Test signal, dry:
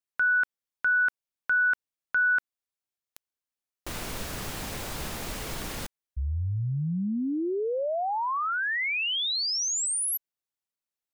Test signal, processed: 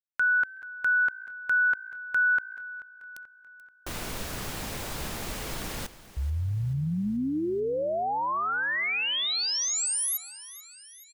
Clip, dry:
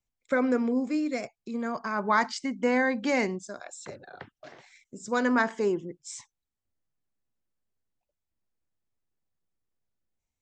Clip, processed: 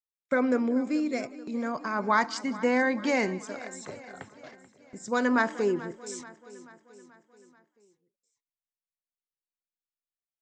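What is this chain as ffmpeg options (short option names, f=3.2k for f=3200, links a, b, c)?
-filter_complex "[0:a]asplit=2[a][b];[b]asplit=2[c][d];[c]adelay=186,afreqshift=56,volume=-21.5dB[e];[d]adelay=372,afreqshift=112,volume=-30.9dB[f];[e][f]amix=inputs=2:normalize=0[g];[a][g]amix=inputs=2:normalize=0,agate=range=-32dB:threshold=-46dB:ratio=16:release=108:detection=rms,asplit=2[h][i];[i]aecho=0:1:434|868|1302|1736|2170:0.133|0.0733|0.0403|0.0222|0.0122[j];[h][j]amix=inputs=2:normalize=0"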